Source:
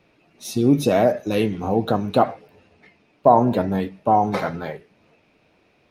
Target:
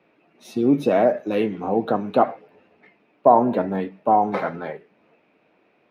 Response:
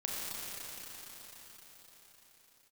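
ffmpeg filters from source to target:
-filter_complex "[0:a]acrossover=split=170 2900:gain=0.112 1 0.178[a][b][c];[a][b][c]amix=inputs=3:normalize=0"

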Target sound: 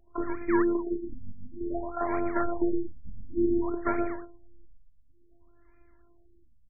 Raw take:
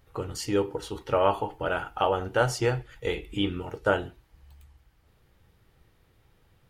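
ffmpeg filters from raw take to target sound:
-filter_complex "[0:a]equalizer=f=130:w=1:g=5.5,afftfilt=real='hypot(re,im)*cos(PI*b)':imag='0':win_size=512:overlap=0.75,asplit=2[a][b];[b]adelay=116,lowpass=f=840:p=1,volume=-5.5dB,asplit=2[c][d];[d]adelay=116,lowpass=f=840:p=1,volume=0.24,asplit=2[e][f];[f]adelay=116,lowpass=f=840:p=1,volume=0.24[g];[a][c][e][g]amix=inputs=4:normalize=0,asplit=2[h][i];[i]acrusher=bits=6:mix=0:aa=0.000001,volume=-11dB[j];[h][j]amix=inputs=2:normalize=0,acrossover=split=320|3000[k][l][m];[l]acompressor=threshold=-32dB:ratio=4[n];[k][n][m]amix=inputs=3:normalize=0,aresample=16000,aresample=44100,acrossover=split=630|1700[o][p][q];[o]acrusher=samples=23:mix=1:aa=0.000001:lfo=1:lforange=23:lforate=3.9[r];[r][p][q]amix=inputs=3:normalize=0,afftfilt=real='re*lt(b*sr/1024,230*pow(2500/230,0.5+0.5*sin(2*PI*0.56*pts/sr)))':imag='im*lt(b*sr/1024,230*pow(2500/230,0.5+0.5*sin(2*PI*0.56*pts/sr)))':win_size=1024:overlap=0.75,volume=3.5dB"

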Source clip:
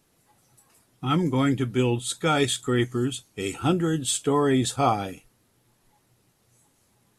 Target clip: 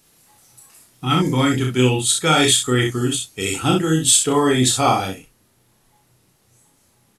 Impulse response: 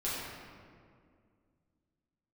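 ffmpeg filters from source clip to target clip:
-af "asetnsamples=n=441:p=0,asendcmd='5.08 highshelf g 2',highshelf=f=2.1k:g=9,aecho=1:1:32|63:0.631|0.531,volume=2.5dB"

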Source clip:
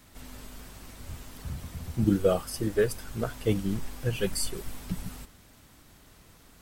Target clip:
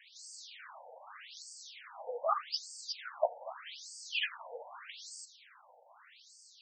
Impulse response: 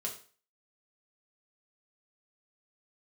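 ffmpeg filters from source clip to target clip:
-af "afftfilt=real='re*between(b*sr/1024,640*pow(6400/640,0.5+0.5*sin(2*PI*0.82*pts/sr))/1.41,640*pow(6400/640,0.5+0.5*sin(2*PI*0.82*pts/sr))*1.41)':imag='im*between(b*sr/1024,640*pow(6400/640,0.5+0.5*sin(2*PI*0.82*pts/sr))/1.41,640*pow(6400/640,0.5+0.5*sin(2*PI*0.82*pts/sr))*1.41)':win_size=1024:overlap=0.75,volume=7dB"

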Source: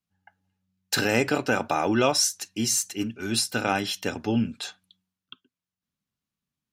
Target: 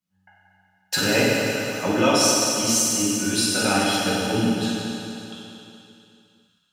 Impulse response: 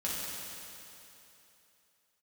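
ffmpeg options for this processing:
-filter_complex "[0:a]asettb=1/sr,asplit=3[a][b][c];[a]atrim=end=1.264[d];[b]atrim=start=1.26:end=1.83,asetpts=PTS-STARTPTS,afade=t=in:d=0.004:c=qsin,afade=t=out:st=0.566:d=0.004:c=qsin,aderivative[e];[c]atrim=start=1.826[f];[d][e]acrossfade=d=0.004:c1=hsin:c2=qsin[g];[g][f]acrossfade=d=0.004:c1=qsin:c2=hsin[h];[1:a]atrim=start_sample=2205[i];[h][i]afir=irnorm=-1:irlink=0"

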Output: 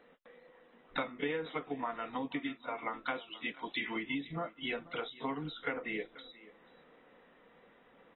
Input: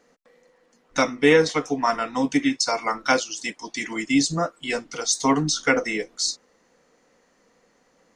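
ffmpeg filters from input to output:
-filter_complex "[0:a]lowshelf=f=220:g=-4.5,acompressor=threshold=-35dB:ratio=8,asettb=1/sr,asplit=3[a][b][c];[a]atrim=end=3.544[d];[b]atrim=start=3.54:end=3.96,asetpts=PTS-STARTPTS,afade=t=in:d=0.004:c=qsin,afade=t=out:st=0.416:d=0.004:c=qsin,aemphasis=mode=production:type=75fm[e];[c]atrim=start=3.956[f];[d][e]acrossfade=d=0.004:c1=hsin:c2=qsin[g];[g][f]acrossfade=d=0.004:c1=qsin:c2=hsin,asplit=2[h][i];[i]aecho=0:1:485:0.106[j];[h][j]amix=inputs=2:normalize=0" -ar 24000 -c:a aac -b:a 16k

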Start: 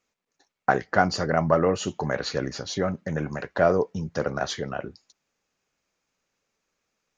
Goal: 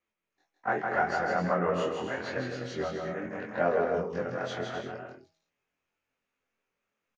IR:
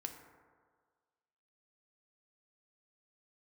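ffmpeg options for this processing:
-filter_complex "[0:a]afftfilt=real='re':imag='-im':win_size=2048:overlap=0.75,highshelf=f=3.6k:t=q:w=1.5:g=-7.5,bandreject=f=162.6:t=h:w=4,bandreject=f=325.2:t=h:w=4,bandreject=f=487.8:t=h:w=4,bandreject=f=650.4:t=h:w=4,bandreject=f=813:t=h:w=4,acrossover=split=130[a][b];[a]acompressor=threshold=-57dB:ratio=5[c];[c][b]amix=inputs=2:normalize=0,asplit=2[d][e];[e]asetrate=55563,aresample=44100,atempo=0.793701,volume=-17dB[f];[d][f]amix=inputs=2:normalize=0,flanger=delay=7.3:depth=9.3:regen=43:speed=0.81:shape=triangular,asplit=2[g][h];[h]aecho=0:1:160|256|313.6|348.2|368.9:0.631|0.398|0.251|0.158|0.1[i];[g][i]amix=inputs=2:normalize=0,volume=1dB"

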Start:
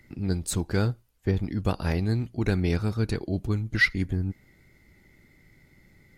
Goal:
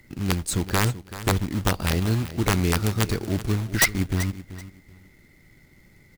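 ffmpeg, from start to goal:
-af "aeval=exprs='(mod(4.73*val(0)+1,2)-1)/4.73':c=same,acrusher=bits=3:mode=log:mix=0:aa=0.000001,aecho=1:1:383|766:0.188|0.0396,volume=2.5dB"

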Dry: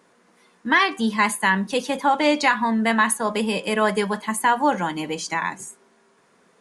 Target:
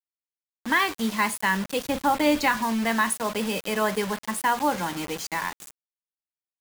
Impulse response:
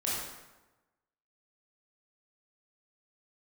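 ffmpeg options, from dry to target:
-filter_complex "[0:a]acrusher=bits=4:mix=0:aa=0.000001,asettb=1/sr,asplit=3[a][b][c];[a]atrim=end=1.854[d];[b]atrim=start=1.85:end=2.57,asetpts=PTS-STARTPTS,afade=t=in:d=0.004:c=qsin,afade=t=out:st=0.716:d=0.004:c=qsin,lowshelf=f=240:g=9.5[e];[c]atrim=start=2.566[f];[d][e]acrossfade=d=0.004:c1=hsin:c2=qsin[g];[g][f]acrossfade=d=0.004:c1=qsin:c2=hsin,volume=-4.5dB"

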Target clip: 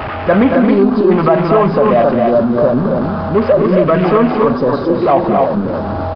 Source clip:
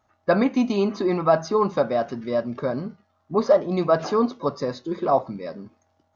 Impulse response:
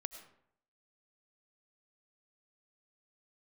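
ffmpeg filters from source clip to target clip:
-filter_complex "[0:a]aeval=exprs='val(0)+0.5*0.0708*sgn(val(0))':c=same,afwtdn=0.0316,asettb=1/sr,asplit=3[a][b][c];[a]atrim=end=3.344[d];[b]atrim=start=3.34:end=4.02,asetpts=PTS-STARTPTS,afade=t=in:d=0.004:c=qsin,afade=t=out:st=0.676:d=0.004:c=qsin,equalizer=f=790:w=3.2:g=-10.5[e];[c]atrim=start=4.016[f];[d][e]acrossfade=d=0.004:c1=hsin:c2=qsin[g];[g][f]acrossfade=d=0.004:c1=qsin:c2=hsin,aecho=1:1:224.5|268.2:0.355|0.631,aresample=11025,aresample=44100,alimiter=level_in=9.5dB:limit=-1dB:release=50:level=0:latency=1,volume=-1dB"

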